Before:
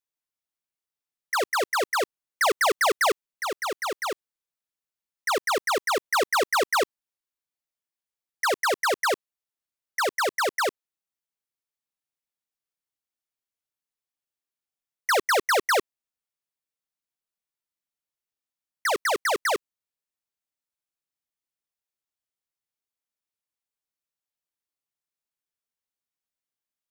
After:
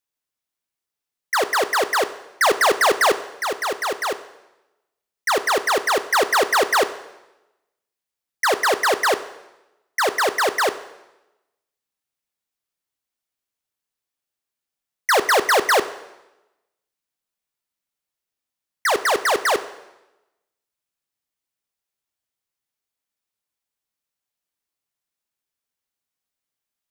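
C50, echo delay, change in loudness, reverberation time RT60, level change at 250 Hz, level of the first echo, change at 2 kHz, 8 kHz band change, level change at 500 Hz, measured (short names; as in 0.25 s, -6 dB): 13.5 dB, none, +5.5 dB, 0.95 s, +5.5 dB, none, +5.5 dB, +5.0 dB, +5.5 dB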